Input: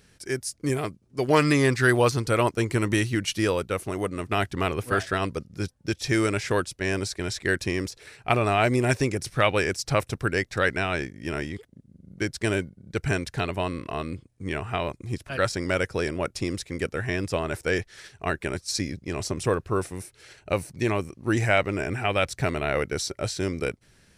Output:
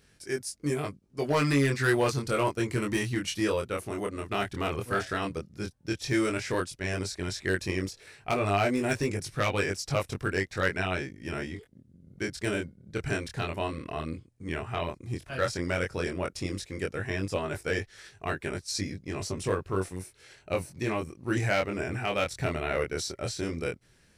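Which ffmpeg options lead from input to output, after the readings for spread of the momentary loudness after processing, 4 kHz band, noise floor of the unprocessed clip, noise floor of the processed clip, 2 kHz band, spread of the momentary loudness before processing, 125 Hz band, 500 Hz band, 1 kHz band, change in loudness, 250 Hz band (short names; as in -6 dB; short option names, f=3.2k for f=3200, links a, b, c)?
9 LU, -4.0 dB, -61 dBFS, -62 dBFS, -4.5 dB, 10 LU, -4.5 dB, -4.5 dB, -4.5 dB, -4.5 dB, -4.0 dB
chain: -af "volume=14.5dB,asoftclip=hard,volume=-14.5dB,flanger=delay=20:depth=5:speed=0.11,volume=-1dB"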